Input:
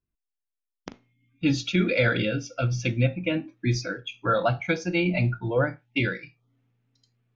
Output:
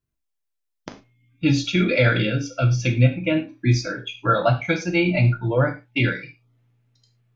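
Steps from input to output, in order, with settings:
reverb whose tail is shaped and stops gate 130 ms falling, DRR 4 dB
level +2.5 dB

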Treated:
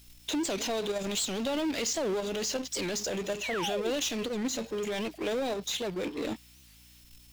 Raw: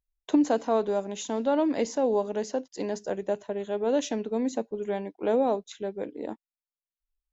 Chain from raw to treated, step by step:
high shelf with overshoot 1,800 Hz +13.5 dB, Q 1.5
output level in coarse steps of 13 dB
brickwall limiter −22 dBFS, peak gain reduction 10 dB
downward compressor, threshold −32 dBFS, peak gain reduction 7 dB
power curve on the samples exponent 0.5
mains hum 60 Hz, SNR 27 dB
sound drawn into the spectrogram fall, 0:03.41–0:03.91, 300–2,900 Hz −36 dBFS
steady tone 5,300 Hz −65 dBFS
wow of a warped record 78 rpm, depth 250 cents

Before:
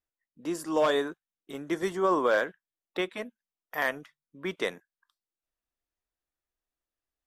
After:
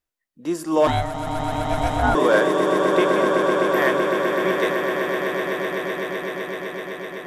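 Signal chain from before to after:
harmonic and percussive parts rebalanced percussive −5 dB
echo that builds up and dies away 127 ms, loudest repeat 8, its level −8 dB
0:00.87–0:02.15: ring modulation 320 Hz
level +8 dB

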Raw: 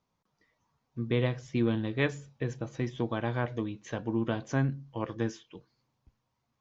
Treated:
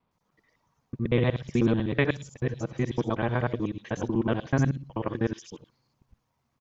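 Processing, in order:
reversed piece by piece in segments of 62 ms
multiband delay without the direct sound lows, highs 110 ms, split 4,000 Hz
level +4.5 dB

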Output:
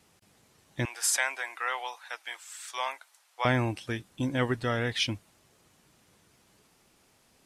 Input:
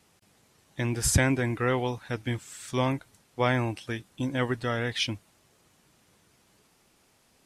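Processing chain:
0:00.85–0:03.45: high-pass filter 750 Hz 24 dB per octave

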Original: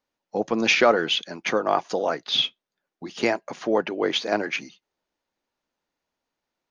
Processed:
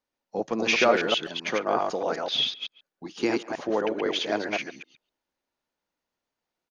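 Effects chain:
delay that plays each chunk backwards 127 ms, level −2.5 dB
0:03.09–0:03.52: thirty-one-band graphic EQ 315 Hz +9 dB, 630 Hz −11 dB, 2,000 Hz −5 dB
far-end echo of a speakerphone 140 ms, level −19 dB
level −4.5 dB

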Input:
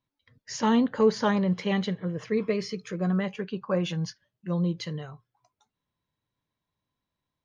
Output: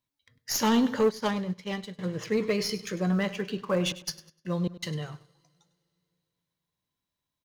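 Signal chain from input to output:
stylus tracing distortion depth 0.037 ms
coupled-rooms reverb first 0.29 s, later 3 s, from −19 dB, DRR 14.5 dB
0:03.81–0:04.91: gate pattern "xx..xxx..x" 199 BPM −60 dB
on a send: repeating echo 100 ms, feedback 35%, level −15.5 dB
on the sum: leveller curve on the samples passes 1
high-shelf EQ 3,100 Hz +10 dB
0:01.06–0:01.99: expander for the loud parts 2.5 to 1, over −29 dBFS
level −3.5 dB

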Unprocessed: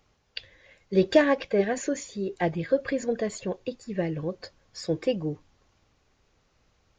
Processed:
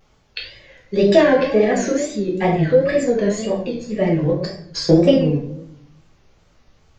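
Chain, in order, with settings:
0:04.29–0:05.17: transient designer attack +10 dB, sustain −4 dB
rectangular room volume 130 cubic metres, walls mixed, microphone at 1.3 metres
in parallel at +1 dB: brickwall limiter −11.5 dBFS, peak gain reduction 10 dB
on the sum: tape wow and flutter 110 cents
level −2.5 dB

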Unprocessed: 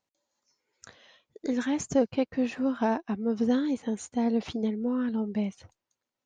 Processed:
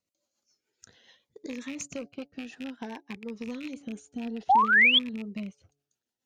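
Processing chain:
loose part that buzzes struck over −34 dBFS, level −23 dBFS
high-shelf EQ 2,900 Hz +3 dB
hum removal 142.4 Hz, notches 6
rotating-speaker cabinet horn 7 Hz
harmonic generator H 5 −22 dB, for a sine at −13.5 dBFS
0:01.46–0:03.81: low-shelf EQ 480 Hz −7 dB
downward compressor 3 to 1, threshold −47 dBFS, peak gain reduction 17.5 dB
noise gate −47 dBFS, range −10 dB
0:04.49–0:04.99: sound drawn into the spectrogram rise 720–3,500 Hz −25 dBFS
phaser whose notches keep moving one way rising 0.57 Hz
level +8 dB

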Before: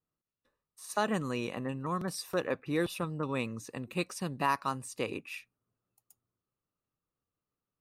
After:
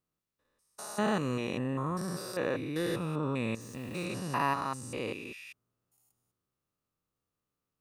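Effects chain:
spectrum averaged block by block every 200 ms
0:03.61–0:04.05: bit-depth reduction 10 bits, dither none
level +4 dB

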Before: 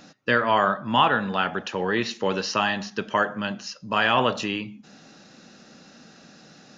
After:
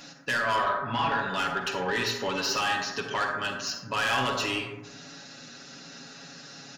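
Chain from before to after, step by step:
tilt shelving filter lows −4.5 dB, about 1,400 Hz
comb filter 7.2 ms, depth 88%
in parallel at −1 dB: downward compressor, threshold −33 dBFS, peak gain reduction 19.5 dB
on the sum: soft clipping −18 dBFS, distortion −9 dB
0:00.58–0:01.19: high-frequency loss of the air 210 metres
on a send at −3 dB: convolution reverb RT60 1.1 s, pre-delay 37 ms
on the sum: level −5 dB

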